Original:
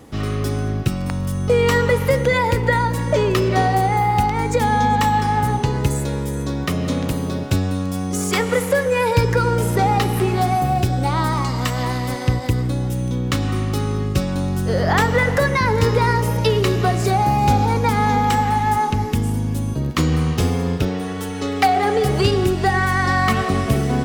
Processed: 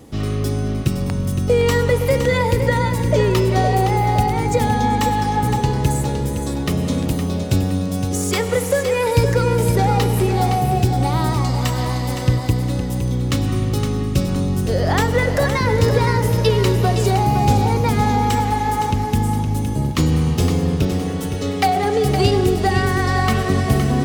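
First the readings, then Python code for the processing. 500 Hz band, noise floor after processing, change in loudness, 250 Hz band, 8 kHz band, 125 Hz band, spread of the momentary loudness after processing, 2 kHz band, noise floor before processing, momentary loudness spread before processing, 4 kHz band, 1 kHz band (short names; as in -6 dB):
+1.0 dB, -23 dBFS, +0.5 dB, +1.5 dB, +2.0 dB, +2.0 dB, 5 LU, -2.5 dB, -24 dBFS, 6 LU, +0.5 dB, -1.5 dB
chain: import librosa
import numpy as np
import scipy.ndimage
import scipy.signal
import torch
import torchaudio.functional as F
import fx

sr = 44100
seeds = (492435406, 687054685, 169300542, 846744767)

y = fx.peak_eq(x, sr, hz=1400.0, db=-6.0, octaves=1.8)
y = fx.echo_feedback(y, sr, ms=514, feedback_pct=37, wet_db=-8)
y = F.gain(torch.from_numpy(y), 1.5).numpy()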